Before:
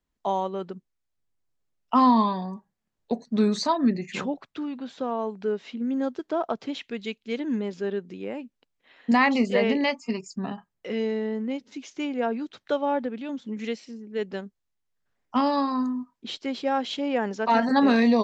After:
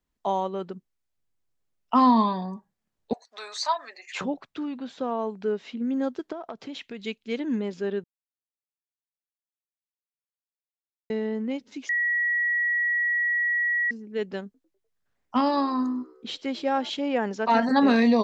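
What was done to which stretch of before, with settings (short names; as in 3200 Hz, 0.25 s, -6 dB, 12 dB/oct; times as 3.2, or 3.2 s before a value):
3.13–4.21 inverse Chebyshev high-pass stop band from 160 Hz, stop band 70 dB
6.32–7.02 compressor 5:1, threshold -33 dBFS
8.04–11.1 mute
11.89–13.91 bleep 1920 Hz -21.5 dBFS
14.44–16.9 frequency-shifting echo 0.1 s, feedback 55%, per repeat +63 Hz, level -23.5 dB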